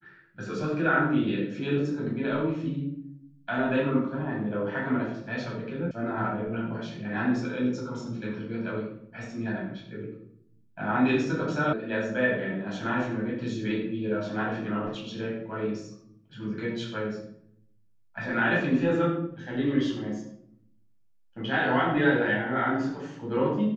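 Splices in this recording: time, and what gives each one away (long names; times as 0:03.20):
0:05.91: cut off before it has died away
0:11.73: cut off before it has died away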